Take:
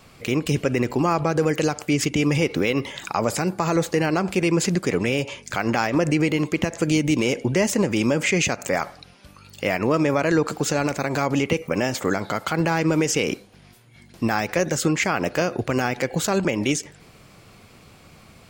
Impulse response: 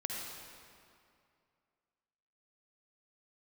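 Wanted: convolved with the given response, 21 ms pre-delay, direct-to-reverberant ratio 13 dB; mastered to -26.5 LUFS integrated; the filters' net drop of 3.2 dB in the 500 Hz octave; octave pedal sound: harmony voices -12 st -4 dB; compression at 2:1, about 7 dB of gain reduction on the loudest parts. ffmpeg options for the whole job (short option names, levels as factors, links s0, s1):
-filter_complex "[0:a]equalizer=f=500:t=o:g=-4,acompressor=threshold=0.0316:ratio=2,asplit=2[s0][s1];[1:a]atrim=start_sample=2205,adelay=21[s2];[s1][s2]afir=irnorm=-1:irlink=0,volume=0.168[s3];[s0][s3]amix=inputs=2:normalize=0,asplit=2[s4][s5];[s5]asetrate=22050,aresample=44100,atempo=2,volume=0.631[s6];[s4][s6]amix=inputs=2:normalize=0,volume=1.33"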